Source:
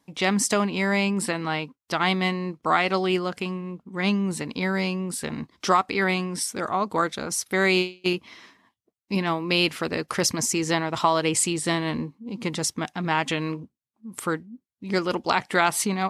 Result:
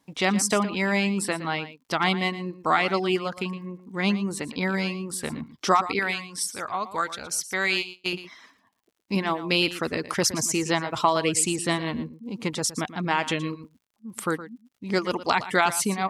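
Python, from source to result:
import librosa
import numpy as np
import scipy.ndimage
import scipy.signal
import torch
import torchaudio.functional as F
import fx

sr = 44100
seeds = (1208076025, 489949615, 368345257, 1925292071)

y = fx.dereverb_blind(x, sr, rt60_s=0.62)
y = fx.peak_eq(y, sr, hz=250.0, db=-10.5, octaves=2.7, at=(5.99, 8.13))
y = y + 10.0 ** (-14.0 / 20.0) * np.pad(y, (int(116 * sr / 1000.0), 0))[:len(y)]
y = fx.dmg_crackle(y, sr, seeds[0], per_s=88.0, level_db=-56.0)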